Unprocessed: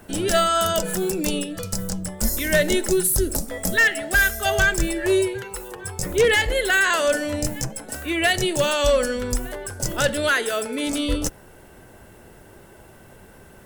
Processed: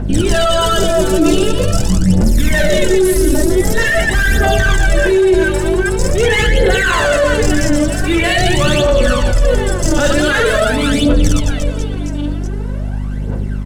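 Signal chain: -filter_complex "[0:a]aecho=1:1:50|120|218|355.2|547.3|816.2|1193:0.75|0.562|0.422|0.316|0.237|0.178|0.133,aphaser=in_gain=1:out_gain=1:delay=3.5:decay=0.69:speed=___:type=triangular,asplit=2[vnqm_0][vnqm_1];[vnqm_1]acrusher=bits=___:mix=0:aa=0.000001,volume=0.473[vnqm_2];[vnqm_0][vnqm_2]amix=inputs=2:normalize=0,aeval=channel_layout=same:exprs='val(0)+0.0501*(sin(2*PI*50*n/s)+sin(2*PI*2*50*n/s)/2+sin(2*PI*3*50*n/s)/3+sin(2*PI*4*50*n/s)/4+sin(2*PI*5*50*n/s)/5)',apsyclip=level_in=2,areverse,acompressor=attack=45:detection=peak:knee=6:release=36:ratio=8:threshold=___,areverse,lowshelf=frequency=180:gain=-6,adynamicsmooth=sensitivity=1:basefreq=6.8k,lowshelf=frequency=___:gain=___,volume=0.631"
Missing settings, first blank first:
0.45, 6, 0.224, 400, 11.5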